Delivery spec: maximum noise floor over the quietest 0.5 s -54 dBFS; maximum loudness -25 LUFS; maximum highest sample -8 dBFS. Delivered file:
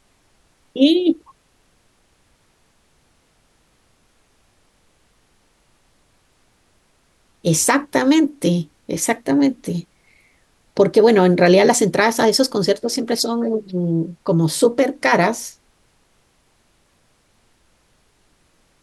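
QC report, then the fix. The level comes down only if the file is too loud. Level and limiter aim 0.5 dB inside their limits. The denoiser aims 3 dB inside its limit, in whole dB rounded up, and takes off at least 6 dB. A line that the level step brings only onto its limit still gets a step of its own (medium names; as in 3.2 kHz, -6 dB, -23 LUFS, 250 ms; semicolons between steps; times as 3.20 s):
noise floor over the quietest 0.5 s -60 dBFS: pass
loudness -17.5 LUFS: fail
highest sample -3.5 dBFS: fail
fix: trim -8 dB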